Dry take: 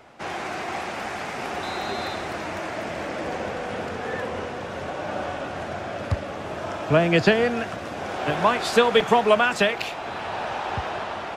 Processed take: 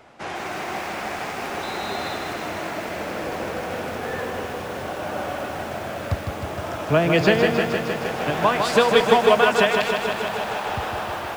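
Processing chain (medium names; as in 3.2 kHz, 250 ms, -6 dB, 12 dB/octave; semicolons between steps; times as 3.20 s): bit-crushed delay 155 ms, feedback 80%, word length 7-bit, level -5.5 dB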